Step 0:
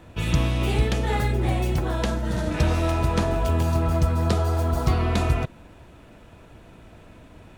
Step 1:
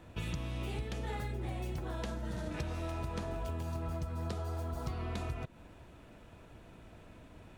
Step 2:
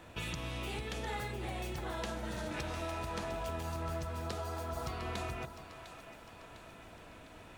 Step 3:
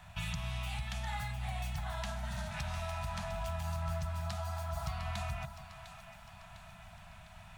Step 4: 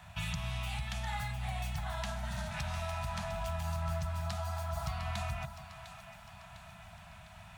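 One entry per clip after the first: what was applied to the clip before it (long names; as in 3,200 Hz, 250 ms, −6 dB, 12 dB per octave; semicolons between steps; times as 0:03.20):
downward compressor 6 to 1, threshold −28 dBFS, peak gain reduction 12.5 dB; level −7 dB
low-shelf EQ 400 Hz −10 dB; in parallel at −2 dB: brickwall limiter −38 dBFS, peak gain reduction 9 dB; on the sum: echo with a time of its own for lows and highs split 610 Hz, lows 159 ms, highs 703 ms, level −11 dB; level +1 dB
elliptic band-stop filter 190–680 Hz, stop band 50 dB; low-shelf EQ 210 Hz +5.5 dB
high-pass filter 44 Hz; level +1.5 dB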